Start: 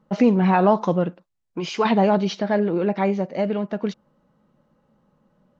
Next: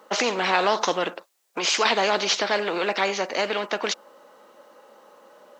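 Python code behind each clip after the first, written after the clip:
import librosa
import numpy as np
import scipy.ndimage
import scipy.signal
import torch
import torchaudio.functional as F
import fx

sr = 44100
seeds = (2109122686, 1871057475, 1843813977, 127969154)

y = scipy.signal.sosfilt(scipy.signal.butter(4, 400.0, 'highpass', fs=sr, output='sos'), x)
y = fx.high_shelf(y, sr, hz=4300.0, db=7.0)
y = fx.spectral_comp(y, sr, ratio=2.0)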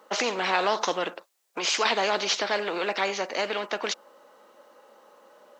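y = fx.low_shelf(x, sr, hz=95.0, db=-11.5)
y = y * librosa.db_to_amplitude(-3.0)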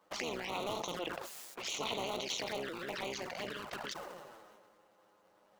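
y = fx.cycle_switch(x, sr, every=3, mode='muted')
y = fx.env_flanger(y, sr, rest_ms=11.2, full_db=-24.5)
y = fx.sustainer(y, sr, db_per_s=30.0)
y = y * librosa.db_to_amplitude(-9.0)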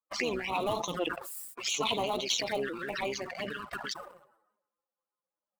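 y = fx.bin_expand(x, sr, power=2.0)
y = fx.leveller(y, sr, passes=1)
y = y * librosa.db_to_amplitude(8.0)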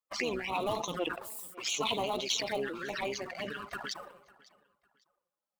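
y = fx.echo_feedback(x, sr, ms=552, feedback_pct=28, wet_db=-22)
y = y * librosa.db_to_amplitude(-1.5)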